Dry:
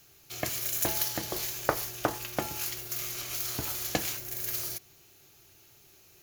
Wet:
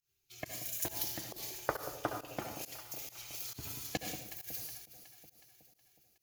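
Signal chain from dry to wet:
spectral dynamics exaggerated over time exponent 1.5
delay that swaps between a low-pass and a high-pass 184 ms, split 820 Hz, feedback 74%, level −10 dB
convolution reverb RT60 0.60 s, pre-delay 60 ms, DRR 4 dB
fake sidechain pumping 136 BPM, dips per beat 1, −19 dB, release 132 ms
level −6 dB

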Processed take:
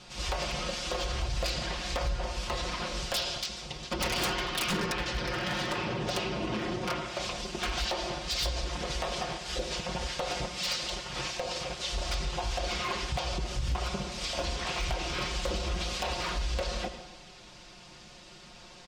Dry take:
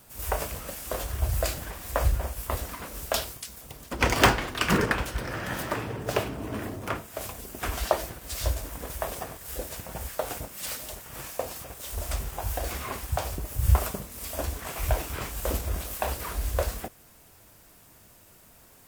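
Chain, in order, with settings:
low-pass filter 4,900 Hz 24 dB per octave
comb filter 5.6 ms, depth 83%
on a send at −11.5 dB: convolution reverb RT60 0.90 s, pre-delay 72 ms
on the sum: downward compressor 2.5 to 1, threshold −30 dBFS, peak gain reduction 13 dB
high-shelf EQ 2,200 Hz +12 dB
wave folding −22.5 dBFS
brickwall limiter −25.5 dBFS, peak gain reduction 3 dB
parametric band 1,700 Hz −4.5 dB 0.75 octaves
level +2.5 dB

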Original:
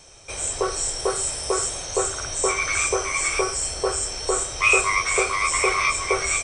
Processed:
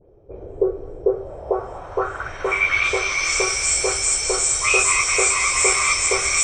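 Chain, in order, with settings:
every frequency bin delayed by itself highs late, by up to 104 ms
low-pass filter sweep 420 Hz → 7,600 Hz, 0:01.04–0:03.56
delay with a high-pass on its return 207 ms, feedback 81%, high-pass 1,500 Hz, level −7 dB

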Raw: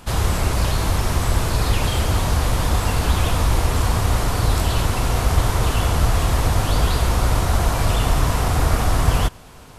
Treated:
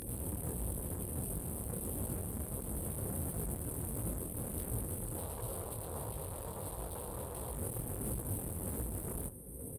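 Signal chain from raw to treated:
wavefolder on the positive side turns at −18.5 dBFS
brick-wall band-stop 550–8,300 Hz
upward compression, threshold −25 dBFS
tube saturation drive 30 dB, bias 0.75
0:05.17–0:07.54: octave-band graphic EQ 250/500/1,000/4,000 Hz −6/+6/+10/+9 dB
brickwall limiter −33.5 dBFS, peak gain reduction 12.5 dB
high-pass filter 59 Hz
high-shelf EQ 2,200 Hz +8 dB
repeating echo 523 ms, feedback 57%, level −20 dB
micro pitch shift up and down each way 51 cents
level +2.5 dB

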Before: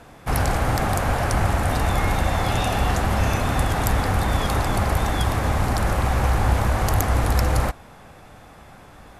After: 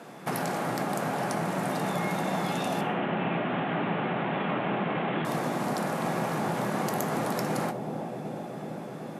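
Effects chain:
0:02.81–0:05.25: linear delta modulator 16 kbit/s, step −20 dBFS
elliptic high-pass filter 160 Hz, stop band 50 dB
low-shelf EQ 430 Hz +5 dB
downward compressor 6 to 1, threshold −28 dBFS, peak gain reduction 9.5 dB
bucket-brigade delay 376 ms, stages 2,048, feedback 82%, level −7 dB
convolution reverb RT60 0.60 s, pre-delay 4 ms, DRR 8.5 dB

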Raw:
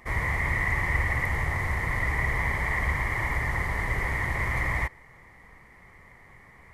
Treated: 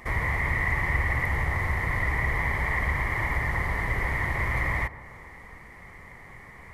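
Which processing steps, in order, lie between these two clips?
dynamic equaliser 7,600 Hz, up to −5 dB, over −54 dBFS, Q 1
in parallel at +3 dB: downward compressor, threshold −37 dBFS, peak gain reduction 15.5 dB
on the sum: delay with a low-pass on its return 130 ms, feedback 70%, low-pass 1,500 Hz, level −16 dB
level −2 dB

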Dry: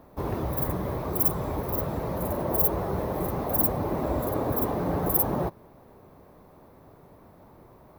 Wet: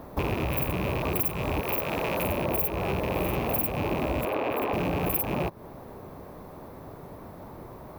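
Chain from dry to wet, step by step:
loose part that buzzes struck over −34 dBFS, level −25 dBFS
0:01.61–0:02.25: parametric band 78 Hz −11.5 dB 2.9 octaves
0:03.11–0:03.59: double-tracking delay 48 ms −2.5 dB
0:04.25–0:04.73: three-way crossover with the lows and the highs turned down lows −16 dB, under 290 Hz, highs −14 dB, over 3,700 Hz
downward compressor 6 to 1, threshold −34 dBFS, peak gain reduction 15.5 dB
level +9 dB

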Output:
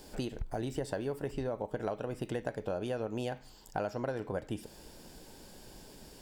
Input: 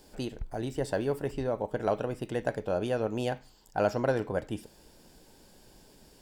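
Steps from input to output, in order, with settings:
downward compressor 6 to 1, threshold −37 dBFS, peak gain reduction 15 dB
level +4.5 dB

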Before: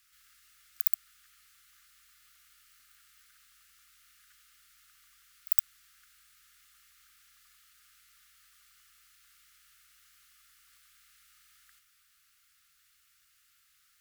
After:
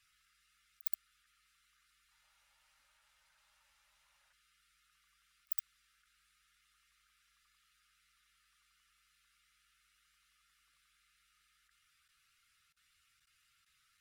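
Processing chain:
spectral dynamics exaggerated over time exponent 1.5
high-shelf EQ 9,900 Hz −10 dB
output level in coarse steps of 20 dB
0:02.00–0:04.33: delay with pitch and tempo change per echo 110 ms, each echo −7 semitones, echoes 2, each echo −6 dB
level +5.5 dB

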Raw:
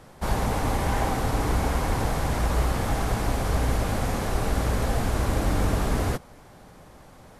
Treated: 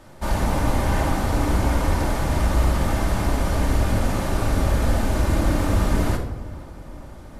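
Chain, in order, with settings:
on a send: feedback echo with a low-pass in the loop 473 ms, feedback 76%, low-pass 2,300 Hz, level −21 dB
on the sum: rectangular room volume 2,500 cubic metres, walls furnished, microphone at 2.6 metres

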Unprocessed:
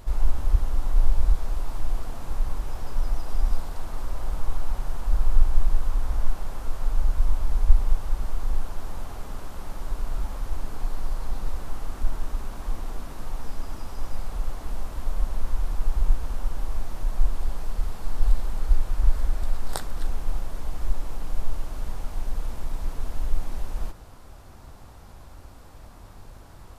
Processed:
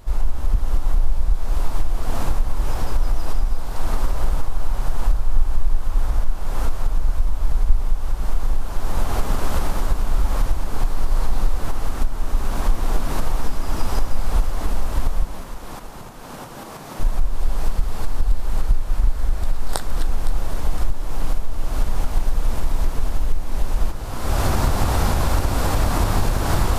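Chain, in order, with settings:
camcorder AGC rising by 37 dB per second
0:15.25–0:17.00: high-pass filter 130 Hz 24 dB per octave
echo with a time of its own for lows and highs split 790 Hz, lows 329 ms, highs 512 ms, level −14 dB

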